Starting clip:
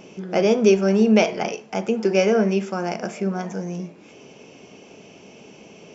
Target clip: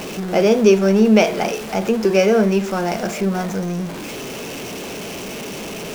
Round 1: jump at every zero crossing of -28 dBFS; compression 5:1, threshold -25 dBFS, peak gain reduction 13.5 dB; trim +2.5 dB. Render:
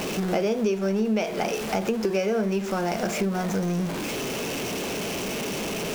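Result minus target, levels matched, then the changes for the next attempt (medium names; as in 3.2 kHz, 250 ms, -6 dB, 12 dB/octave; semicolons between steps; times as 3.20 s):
compression: peak gain reduction +13.5 dB
remove: compression 5:1, threshold -25 dBFS, peak gain reduction 13.5 dB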